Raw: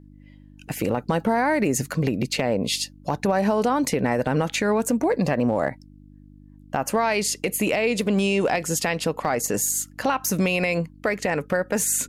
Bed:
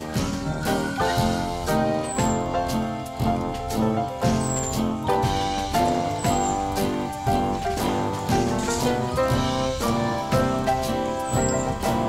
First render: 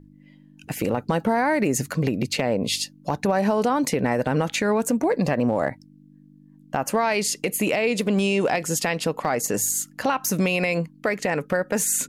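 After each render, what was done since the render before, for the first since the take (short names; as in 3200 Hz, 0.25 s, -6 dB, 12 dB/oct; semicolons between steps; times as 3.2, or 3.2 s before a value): de-hum 50 Hz, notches 2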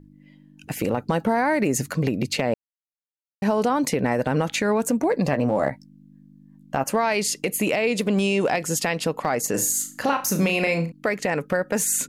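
2.54–3.42 mute; 5.31–6.84 doubler 15 ms -7.5 dB; 9.51–10.92 flutter echo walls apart 6.2 m, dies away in 0.3 s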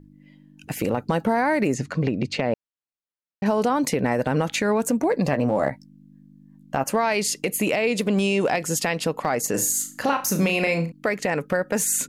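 1.74–3.46 air absorption 110 m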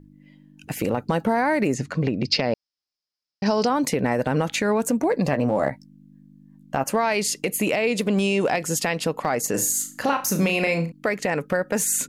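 2.25–3.67 synth low-pass 5100 Hz, resonance Q 9.1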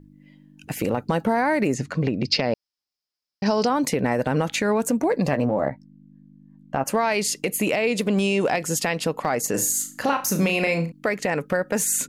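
5.44–6.84 LPF 1100 Hz -> 2500 Hz 6 dB/oct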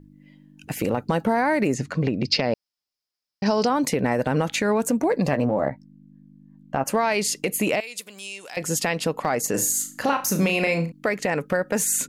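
7.8–8.57 pre-emphasis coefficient 0.97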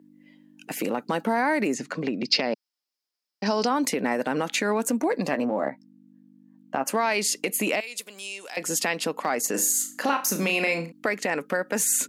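HPF 220 Hz 24 dB/oct; dynamic EQ 510 Hz, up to -4 dB, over -32 dBFS, Q 0.98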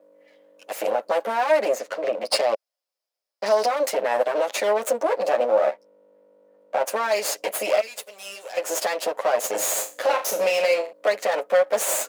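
minimum comb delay 9.5 ms; resonant high-pass 570 Hz, resonance Q 4.9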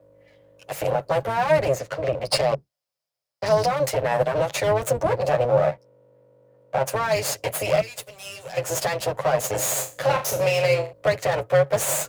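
octaver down 2 oct, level +2 dB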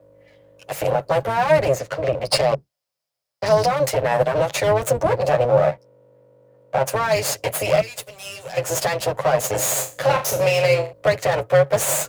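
gain +3 dB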